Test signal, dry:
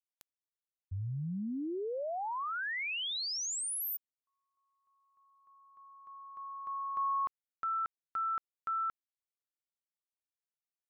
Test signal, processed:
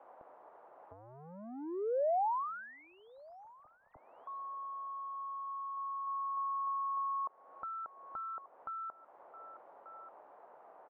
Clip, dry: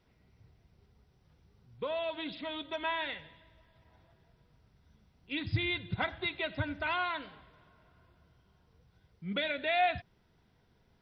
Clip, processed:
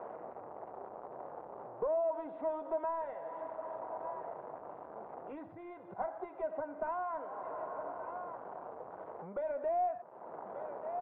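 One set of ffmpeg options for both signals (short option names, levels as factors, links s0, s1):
-af "aeval=exprs='val(0)+0.5*0.00562*sgn(val(0))':c=same,aecho=1:1:1186:0.0708,acompressor=threshold=0.00794:ratio=12:attack=65:release=395:knee=1:detection=rms,highpass=f=630:t=q:w=1.5,asoftclip=type=tanh:threshold=0.0112,lowpass=f=1000:w=0.5412,lowpass=f=1000:w=1.3066,volume=3.98"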